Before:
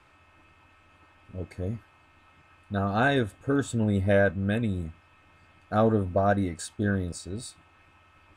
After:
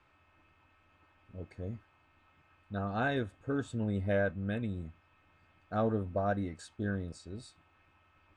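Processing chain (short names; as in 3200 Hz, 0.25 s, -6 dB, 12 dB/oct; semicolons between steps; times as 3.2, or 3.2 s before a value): air absorption 70 m; gain -8 dB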